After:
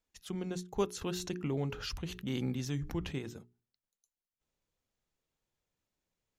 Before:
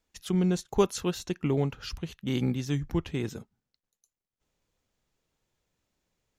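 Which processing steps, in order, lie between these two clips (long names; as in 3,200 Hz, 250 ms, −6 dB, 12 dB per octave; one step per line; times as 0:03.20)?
mains-hum notches 60/120/180/240/300/360/420 Hz
0:01.01–0:03.19: envelope flattener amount 50%
level −8 dB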